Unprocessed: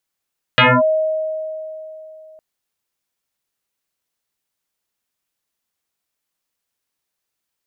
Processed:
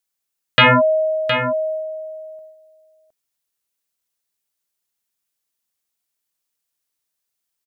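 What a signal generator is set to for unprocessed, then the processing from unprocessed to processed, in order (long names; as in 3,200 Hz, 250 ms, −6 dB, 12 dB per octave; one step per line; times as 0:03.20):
two-operator FM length 1.81 s, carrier 629 Hz, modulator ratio 0.6, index 7.6, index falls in 0.24 s linear, decay 3.22 s, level −7 dB
noise gate −33 dBFS, range −6 dB
high-shelf EQ 4,200 Hz +8 dB
single-tap delay 714 ms −9 dB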